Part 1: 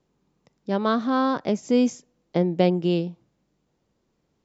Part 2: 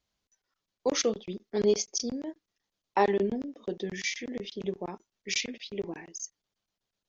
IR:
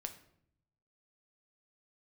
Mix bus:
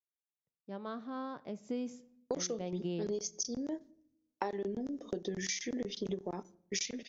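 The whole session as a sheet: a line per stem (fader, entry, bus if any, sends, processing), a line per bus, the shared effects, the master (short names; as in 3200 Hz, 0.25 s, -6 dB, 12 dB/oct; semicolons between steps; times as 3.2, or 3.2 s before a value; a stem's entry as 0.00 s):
1.49 s -22 dB -> 1.75 s -15 dB -> 2.59 s -15 dB -> 3.04 s -4.5 dB, 0.00 s, send -3.5 dB, expander -50 dBFS
+2.5 dB, 1.45 s, send -11 dB, gate with hold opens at -49 dBFS; fifteen-band EQ 1000 Hz -3 dB, 2500 Hz -7 dB, 6300 Hz +9 dB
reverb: on, RT60 0.70 s, pre-delay 7 ms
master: high shelf 6000 Hz -9 dB; compressor 12:1, threshold -33 dBFS, peak gain reduction 18 dB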